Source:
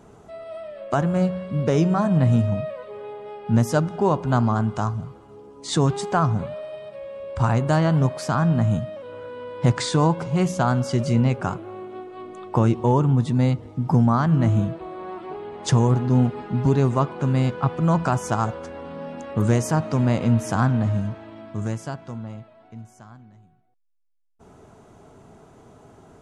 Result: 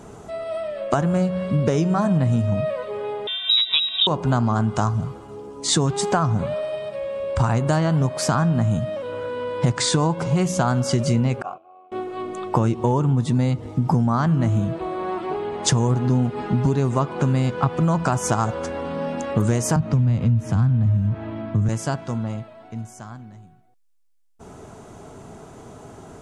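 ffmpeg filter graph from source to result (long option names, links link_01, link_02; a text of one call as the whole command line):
ffmpeg -i in.wav -filter_complex "[0:a]asettb=1/sr,asplit=3[link_01][link_02][link_03];[link_01]atrim=end=3.274[link_04];[link_02]atrim=start=3.27:end=4.07,asetpts=PTS-STARTPTS,afade=type=in:duration=0.004:curve=qsin,afade=type=out:start_time=0.796:duration=0.004:curve=qsin,highshelf=frequency=2300:gain=10,lowpass=frequency=3400:width_type=q:width=0.5098,lowpass=frequency=3400:width_type=q:width=0.6013,lowpass=frequency=3400:width_type=q:width=0.9,lowpass=frequency=3400:width_type=q:width=2.563,afreqshift=-4000[link_05];[link_03]atrim=start=4.066[link_06];[link_04][link_05]acrossfade=duration=0.004:curve1=hsin:curve2=qsin[link_07];[link_07][link_06]acrossfade=duration=0.004:curve1=qsin:curve2=hsin,asettb=1/sr,asplit=3[link_08][link_09][link_10];[link_08]atrim=end=11.424[link_11];[link_09]atrim=start=11.42:end=11.92,asetpts=PTS-STARTPTS,afade=type=in:duration=0.004:curve=qsin,afade=type=out:start_time=0.496:duration=0.004:curve=qsin,agate=range=-8dB:threshold=-34dB:ratio=16:release=100:detection=peak,tremolo=f=89:d=0.621,asplit=3[link_12][link_13][link_14];[link_12]bandpass=frequency=730:width_type=q:width=8,volume=0dB[link_15];[link_13]bandpass=frequency=1090:width_type=q:width=8,volume=-6dB[link_16];[link_14]bandpass=frequency=2440:width_type=q:width=8,volume=-9dB[link_17];[link_15][link_16][link_17]amix=inputs=3:normalize=0[link_18];[link_10]atrim=start=11.916[link_19];[link_11][link_18]acrossfade=duration=0.004:curve1=hsin:curve2=qsin[link_20];[link_20][link_19]acrossfade=duration=0.004:curve1=qsin:curve2=hsin,asettb=1/sr,asplit=3[link_21][link_22][link_23];[link_21]atrim=end=19.764[link_24];[link_22]atrim=start=19.76:end=21.69,asetpts=PTS-STARTPTS,afade=type=in:duration=0.004:curve=qsin,afade=type=out:start_time=1.926:duration=0.004:curve=qsin,bass=frequency=250:gain=8,treble=frequency=4000:gain=-14,acrossover=split=180|3000[link_25][link_26][link_27];[link_26]acompressor=threshold=-33dB:ratio=2.5:attack=3.2:release=140:knee=2.83:detection=peak[link_28];[link_25][link_28][link_27]amix=inputs=3:normalize=0[link_29];[link_23]atrim=start=21.686[link_30];[link_24][link_29]acrossfade=duration=0.004:curve1=hsin:curve2=qsin[link_31];[link_31][link_30]acrossfade=duration=0.004:curve1=qsin:curve2=hsin,equalizer=frequency=8000:width_type=o:width=1.3:gain=4.5,acompressor=threshold=-24dB:ratio=6,volume=7.5dB" out.wav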